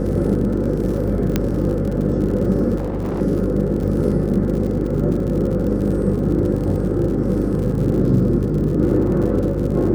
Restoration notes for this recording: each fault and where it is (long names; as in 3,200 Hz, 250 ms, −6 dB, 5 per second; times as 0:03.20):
mains buzz 50 Hz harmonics 9 −23 dBFS
surface crackle 75 per second −27 dBFS
0:01.36: click −4 dBFS
0:02.76–0:03.22: clipping −19 dBFS